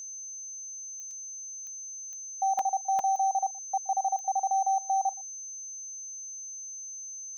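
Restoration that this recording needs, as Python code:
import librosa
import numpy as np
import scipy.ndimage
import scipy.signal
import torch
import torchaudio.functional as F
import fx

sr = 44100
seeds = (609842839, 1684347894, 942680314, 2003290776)

y = fx.fix_declick_ar(x, sr, threshold=10.0)
y = fx.notch(y, sr, hz=6200.0, q=30.0)
y = fx.fix_interpolate(y, sr, at_s=(1.11, 2.59, 2.99), length_ms=2.6)
y = fx.fix_echo_inverse(y, sr, delay_ms=120, level_db=-23.0)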